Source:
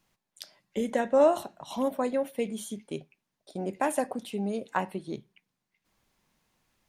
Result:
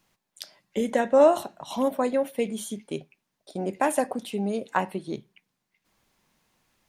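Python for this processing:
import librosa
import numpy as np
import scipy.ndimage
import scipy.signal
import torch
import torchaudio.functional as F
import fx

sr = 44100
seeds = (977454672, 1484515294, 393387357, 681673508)

y = fx.low_shelf(x, sr, hz=120.0, db=-4.0)
y = y * 10.0 ** (4.0 / 20.0)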